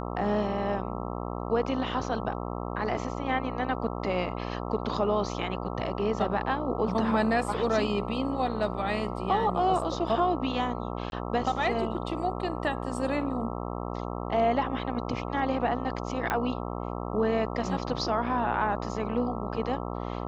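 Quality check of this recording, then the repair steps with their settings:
mains buzz 60 Hz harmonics 22 −34 dBFS
0:11.10–0:11.12: drop-out 21 ms
0:16.30: click −13 dBFS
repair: click removal
hum removal 60 Hz, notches 22
repair the gap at 0:11.10, 21 ms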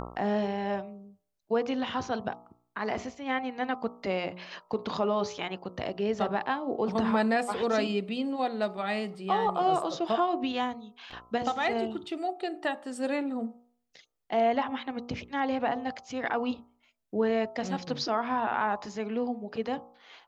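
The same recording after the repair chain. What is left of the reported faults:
none of them is left

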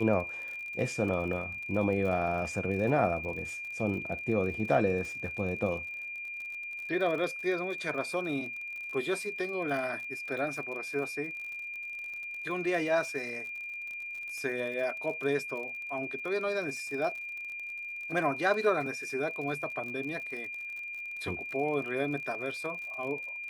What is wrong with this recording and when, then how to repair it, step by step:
surface crackle 48 per second −39 dBFS
whistle 2,400 Hz −37 dBFS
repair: click removal
notch filter 2,400 Hz, Q 30

